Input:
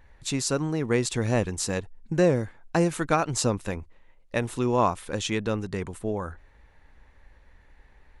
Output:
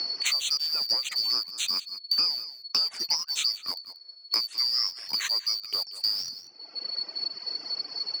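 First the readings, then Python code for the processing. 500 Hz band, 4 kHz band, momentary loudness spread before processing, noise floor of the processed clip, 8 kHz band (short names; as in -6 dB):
-25.0 dB, +15.0 dB, 9 LU, -51 dBFS, -2.0 dB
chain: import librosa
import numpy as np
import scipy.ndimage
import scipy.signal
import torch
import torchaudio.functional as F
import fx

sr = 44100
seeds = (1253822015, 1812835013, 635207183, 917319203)

p1 = fx.band_shuffle(x, sr, order='2341')
p2 = fx.highpass(p1, sr, hz=1500.0, slope=6)
p3 = fx.dereverb_blind(p2, sr, rt60_s=1.7)
p4 = scipy.signal.sosfilt(scipy.signal.butter(2, 4700.0, 'lowpass', fs=sr, output='sos'), p3)
p5 = fx.quant_dither(p4, sr, seeds[0], bits=6, dither='none')
p6 = p4 + (p5 * librosa.db_to_amplitude(-8.5))
p7 = p6 + 10.0 ** (-19.0 / 20.0) * np.pad(p6, (int(186 * sr / 1000.0), 0))[:len(p6)]
y = fx.band_squash(p7, sr, depth_pct=100)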